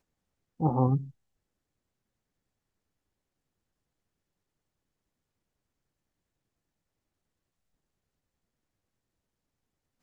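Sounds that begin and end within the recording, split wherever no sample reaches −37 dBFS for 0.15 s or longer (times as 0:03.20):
0:00.60–0:01.04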